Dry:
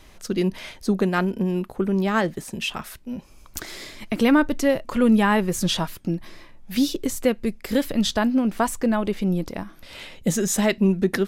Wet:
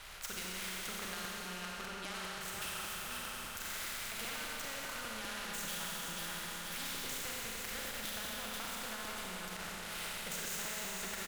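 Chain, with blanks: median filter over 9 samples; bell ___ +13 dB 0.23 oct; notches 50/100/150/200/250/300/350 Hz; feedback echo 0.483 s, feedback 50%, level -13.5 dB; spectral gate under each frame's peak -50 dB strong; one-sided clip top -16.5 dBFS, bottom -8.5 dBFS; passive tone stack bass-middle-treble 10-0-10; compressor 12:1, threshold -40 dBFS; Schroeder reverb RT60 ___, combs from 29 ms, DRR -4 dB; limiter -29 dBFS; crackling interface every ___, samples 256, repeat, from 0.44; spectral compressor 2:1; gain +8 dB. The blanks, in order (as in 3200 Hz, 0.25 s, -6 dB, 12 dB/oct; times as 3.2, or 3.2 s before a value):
1400 Hz, 3 s, 0.20 s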